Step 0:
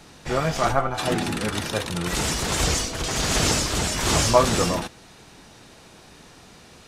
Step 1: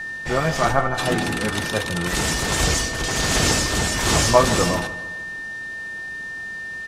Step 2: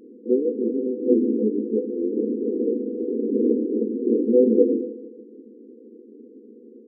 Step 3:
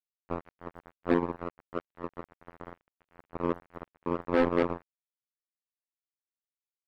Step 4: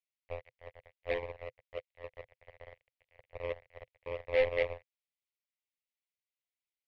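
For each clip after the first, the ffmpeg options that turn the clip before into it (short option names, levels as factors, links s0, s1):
-filter_complex "[0:a]aeval=exprs='val(0)+0.0316*sin(2*PI*1800*n/s)':c=same,asplit=2[s0][s1];[s1]adelay=153,lowpass=f=4100:p=1,volume=0.188,asplit=2[s2][s3];[s3]adelay=153,lowpass=f=4100:p=1,volume=0.5,asplit=2[s4][s5];[s5]adelay=153,lowpass=f=4100:p=1,volume=0.5,asplit=2[s6][s7];[s7]adelay=153,lowpass=f=4100:p=1,volume=0.5,asplit=2[s8][s9];[s9]adelay=153,lowpass=f=4100:p=1,volume=0.5[s10];[s0][s2][s4][s6][s8][s10]amix=inputs=6:normalize=0,volume=1.26"
-af "afftfilt=real='re*between(b*sr/4096,210,510)':imag='im*between(b*sr/4096,210,510)':win_size=4096:overlap=0.75,volume=2.24"
-af "afftfilt=real='hypot(re,im)*cos(PI*b)':imag='0':win_size=2048:overlap=0.75,acrusher=bits=2:mix=0:aa=0.5,volume=0.562"
-af "firequalizer=gain_entry='entry(120,0);entry(170,-23);entry(310,-23);entry(510,4);entry(870,-8);entry(1400,-17);entry(2000,9);entry(7000,-7)':delay=0.05:min_phase=1,volume=0.668"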